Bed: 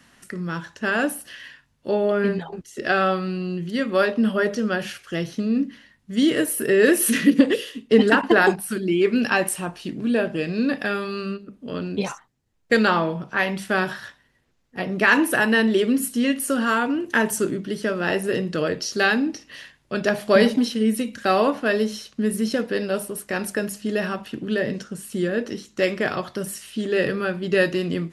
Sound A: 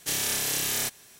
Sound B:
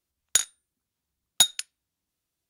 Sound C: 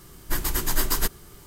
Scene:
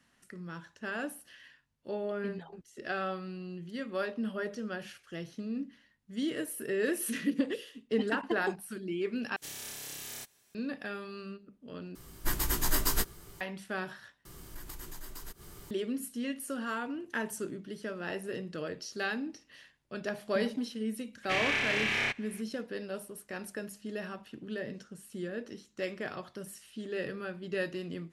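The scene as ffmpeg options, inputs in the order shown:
-filter_complex "[1:a]asplit=2[a][b];[3:a]asplit=2[c][d];[0:a]volume=-14.5dB[e];[c]asplit=2[f][g];[g]adelay=18,volume=-7dB[h];[f][h]amix=inputs=2:normalize=0[i];[d]acompressor=threshold=-39dB:ratio=6:attack=3.2:release=140:knee=1:detection=peak[j];[b]lowpass=f=2.3k:t=q:w=3.4[k];[e]asplit=4[l][m][n][o];[l]atrim=end=9.364[p];[a]atrim=end=1.19,asetpts=PTS-STARTPTS,volume=-15dB[q];[m]atrim=start=10.546:end=11.954[r];[i]atrim=end=1.46,asetpts=PTS-STARTPTS,volume=-5dB[s];[n]atrim=start=13.406:end=14.254[t];[j]atrim=end=1.46,asetpts=PTS-STARTPTS,volume=-2.5dB[u];[o]atrim=start=15.706[v];[k]atrim=end=1.19,asetpts=PTS-STARTPTS,volume=-1dB,afade=t=in:d=0.004:c=hsin,afade=t=out:st=1.186:d=0.004:c=hsin,adelay=21230[w];[p][q]acrossfade=d=0.004:c1=hsin:c2=hsin[x];[x][r]acrossfade=d=0.004:c1=hsin:c2=hsin[y];[y][s]acrossfade=d=0.004:c1=hsin:c2=hsin[z];[z][t]acrossfade=d=0.004:c1=hsin:c2=hsin[aa];[aa][u]acrossfade=d=0.004:c1=hsin:c2=hsin[ab];[ab][v]acrossfade=d=0.004:c1=hsin:c2=hsin[ac];[ac][w]amix=inputs=2:normalize=0"

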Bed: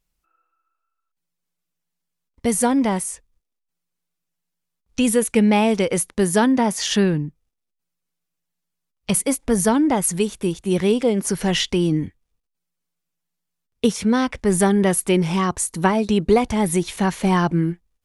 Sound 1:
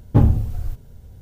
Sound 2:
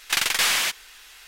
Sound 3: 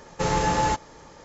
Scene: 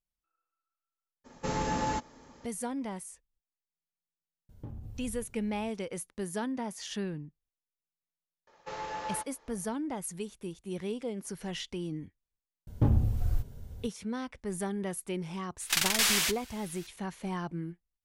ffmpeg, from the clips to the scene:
-filter_complex "[3:a]asplit=2[a][b];[1:a]asplit=2[c][d];[0:a]volume=-17.5dB[e];[a]equalizer=f=250:t=o:w=0.26:g=14.5[f];[c]acompressor=threshold=-27dB:ratio=6:attack=3.2:release=140:knee=1:detection=peak[g];[b]acrossover=split=400 5600:gain=0.2 1 0.0891[h][i][j];[h][i][j]amix=inputs=3:normalize=0[k];[d]alimiter=limit=-12.5dB:level=0:latency=1:release=295[l];[2:a]bass=f=250:g=5,treble=f=4k:g=5[m];[f]atrim=end=1.24,asetpts=PTS-STARTPTS,volume=-9dB,afade=t=in:d=0.02,afade=t=out:st=1.22:d=0.02,adelay=1240[n];[g]atrim=end=1.21,asetpts=PTS-STARTPTS,volume=-12.5dB,afade=t=in:d=0.004:c=hsin,afade=t=out:st=1.206:d=0.004:c=hsin,adelay=198009S[o];[k]atrim=end=1.24,asetpts=PTS-STARTPTS,volume=-13dB,afade=t=in:d=0.004:c=hsin,afade=t=out:st=1.236:d=0.004:c=hsin,adelay=8470[p];[l]atrim=end=1.21,asetpts=PTS-STARTPTS,volume=-2dB,afade=t=in:d=0.004:c=hsin,afade=t=out:st=1.206:d=0.004:c=hsin,adelay=12670[q];[m]atrim=end=1.27,asetpts=PTS-STARTPTS,volume=-7.5dB,afade=t=in:d=0.004:c=hsin,afade=t=out:st=1.266:d=0.004:c=hsin,adelay=15600[r];[e][n][o][p][q][r]amix=inputs=6:normalize=0"

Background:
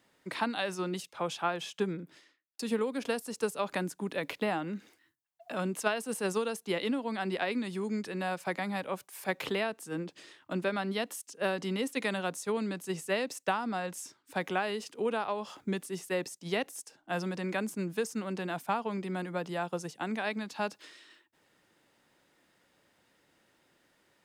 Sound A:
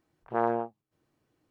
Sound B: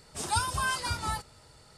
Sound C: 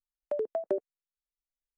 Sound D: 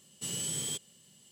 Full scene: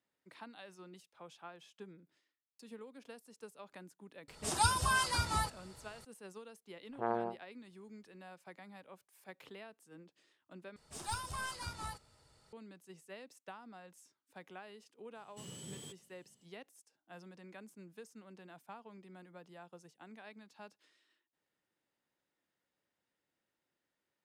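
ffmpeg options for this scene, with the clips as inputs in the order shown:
-filter_complex "[2:a]asplit=2[a][b];[0:a]volume=-19.5dB[c];[b]aeval=exprs='(tanh(7.94*val(0)+0.65)-tanh(0.65))/7.94':c=same[d];[4:a]highshelf=f=2.4k:g=-11.5[e];[c]asplit=2[f][g];[f]atrim=end=10.764[h];[d]atrim=end=1.77,asetpts=PTS-STARTPTS,volume=-8dB[i];[g]atrim=start=12.526[j];[a]atrim=end=1.77,asetpts=PTS-STARTPTS,volume=-1.5dB,afade=t=in:d=0.004:c=hsin,afade=t=out:st=1.766:d=0.004:c=hsin,adelay=4280[k];[1:a]atrim=end=1.5,asetpts=PTS-STARTPTS,volume=-8dB,afade=t=in:d=0.004:c=hsin,afade=t=out:st=1.496:d=0.004:c=hsin,adelay=6670[l];[e]atrim=end=1.31,asetpts=PTS-STARTPTS,volume=-7dB,afade=t=in:d=0.004:c=hsin,afade=t=out:st=1.306:d=0.004:c=hsin,adelay=15150[m];[h][i]acrossfade=d=0.004:c1=hsin:c2=hsin[n];[n][j]acrossfade=d=0.004:c1=hsin:c2=hsin[o];[o][k][l][m]amix=inputs=4:normalize=0"

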